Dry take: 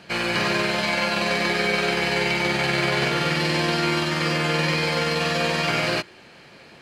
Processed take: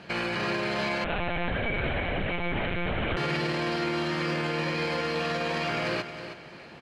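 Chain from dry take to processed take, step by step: low-pass 2.8 kHz 6 dB/octave; peak limiter -22 dBFS, peak gain reduction 10 dB; feedback delay 318 ms, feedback 27%, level -10.5 dB; 1.04–3.17 s: LPC vocoder at 8 kHz pitch kept; trim +1 dB

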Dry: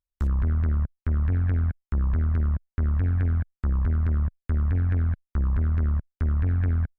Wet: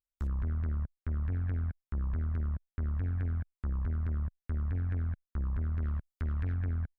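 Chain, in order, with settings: 5.82–6.54 s: treble shelf 2 kHz +10 dB; trim -9 dB

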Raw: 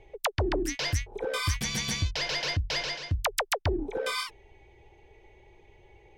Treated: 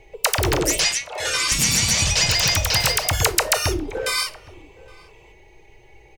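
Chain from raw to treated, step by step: treble shelf 2.7 kHz +11 dB; band-stop 3.4 kHz, Q 5.6; ever faster or slower copies 128 ms, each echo +3 st, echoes 3; 0.84–1.52 s: band-pass 690–7000 Hz; echo from a far wall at 140 m, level -21 dB; simulated room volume 410 m³, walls furnished, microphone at 0.55 m; trim +4 dB

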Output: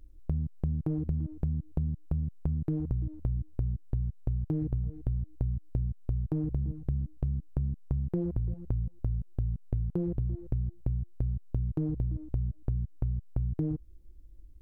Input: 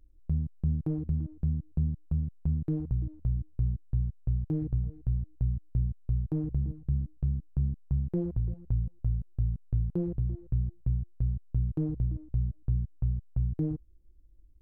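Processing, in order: compression, threshold -34 dBFS, peak gain reduction 11 dB; trim +7 dB

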